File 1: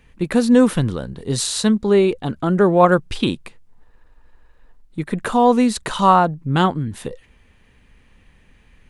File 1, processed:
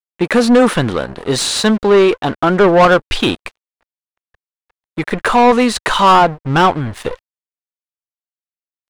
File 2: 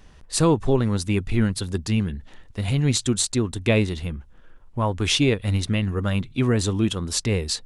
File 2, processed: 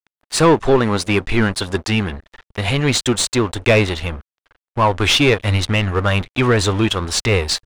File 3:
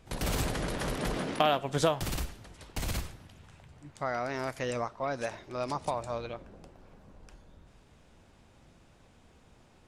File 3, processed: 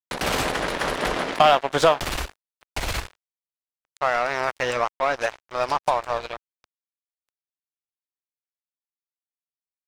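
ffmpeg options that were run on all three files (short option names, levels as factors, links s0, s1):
-filter_complex "[0:a]aeval=exprs='sgn(val(0))*max(abs(val(0))-0.0106,0)':c=same,asubboost=boost=7:cutoff=71,asplit=2[s0][s1];[s1]highpass=f=720:p=1,volume=14.1,asoftclip=type=tanh:threshold=0.891[s2];[s0][s2]amix=inputs=2:normalize=0,lowpass=f=2600:p=1,volume=0.501"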